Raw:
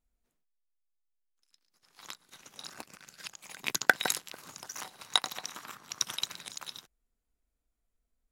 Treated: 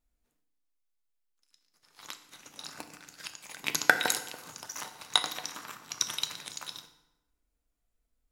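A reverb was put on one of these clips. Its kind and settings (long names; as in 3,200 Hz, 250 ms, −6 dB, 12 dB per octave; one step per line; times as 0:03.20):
feedback delay network reverb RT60 0.93 s, low-frequency decay 1.1×, high-frequency decay 0.75×, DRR 7 dB
level +1 dB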